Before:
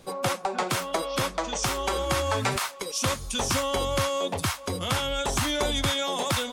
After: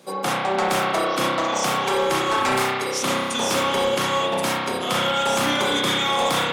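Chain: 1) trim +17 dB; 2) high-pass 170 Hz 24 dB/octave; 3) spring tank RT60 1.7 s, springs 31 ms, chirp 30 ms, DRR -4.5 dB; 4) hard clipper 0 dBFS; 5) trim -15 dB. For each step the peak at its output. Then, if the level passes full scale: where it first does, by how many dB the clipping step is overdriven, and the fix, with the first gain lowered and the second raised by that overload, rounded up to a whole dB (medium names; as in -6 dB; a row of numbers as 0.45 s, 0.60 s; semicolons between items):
+5.5 dBFS, +6.5 dBFS, +8.0 dBFS, 0.0 dBFS, -15.0 dBFS; step 1, 8.0 dB; step 1 +9 dB, step 5 -7 dB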